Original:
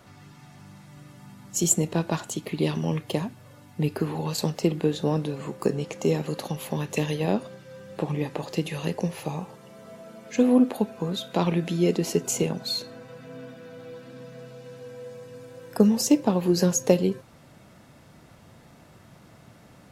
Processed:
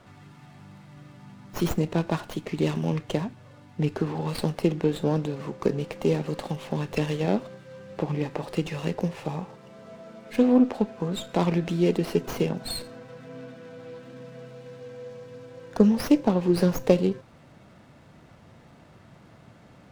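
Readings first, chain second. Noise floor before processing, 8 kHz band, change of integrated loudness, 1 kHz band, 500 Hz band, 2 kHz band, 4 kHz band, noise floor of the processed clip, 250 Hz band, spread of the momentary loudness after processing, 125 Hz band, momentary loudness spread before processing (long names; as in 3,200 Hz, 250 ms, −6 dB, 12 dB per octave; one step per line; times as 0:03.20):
−53 dBFS, −14.0 dB, −0.5 dB, 0.0 dB, 0.0 dB, 0.0 dB, −4.0 dB, −53 dBFS, 0.0 dB, 21 LU, 0.0 dB, 21 LU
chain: low-pass filter 6,800 Hz 24 dB per octave
windowed peak hold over 5 samples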